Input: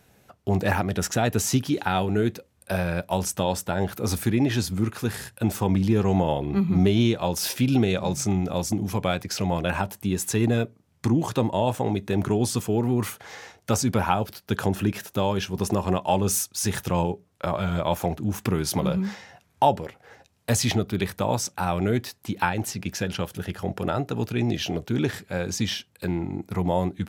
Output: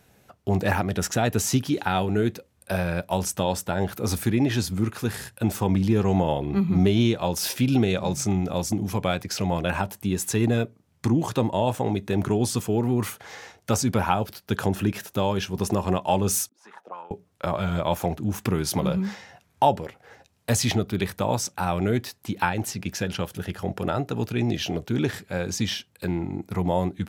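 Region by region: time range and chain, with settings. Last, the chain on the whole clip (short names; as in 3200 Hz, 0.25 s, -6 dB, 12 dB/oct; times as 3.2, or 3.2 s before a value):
16.49–17.11 HPF 190 Hz 24 dB/oct + auto-wah 260–1300 Hz, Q 4.9, up, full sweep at -23 dBFS
whole clip: dry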